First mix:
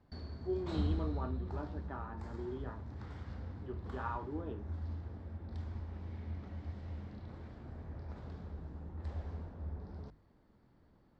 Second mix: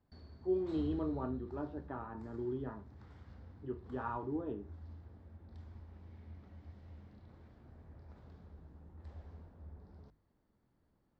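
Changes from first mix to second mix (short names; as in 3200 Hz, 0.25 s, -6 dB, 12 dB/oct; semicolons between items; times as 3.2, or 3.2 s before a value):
speech: add tilt -2.5 dB/oct; background -9.5 dB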